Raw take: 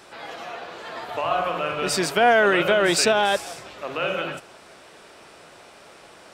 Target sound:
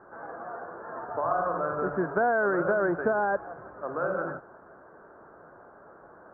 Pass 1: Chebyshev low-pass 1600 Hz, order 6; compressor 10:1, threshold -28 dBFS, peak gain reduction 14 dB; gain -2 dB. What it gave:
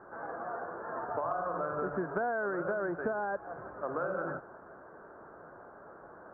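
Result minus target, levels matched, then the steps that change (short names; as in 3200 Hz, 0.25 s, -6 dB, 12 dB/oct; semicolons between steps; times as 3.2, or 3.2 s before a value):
compressor: peak gain reduction +8 dB
change: compressor 10:1, threshold -19 dBFS, peak gain reduction 6 dB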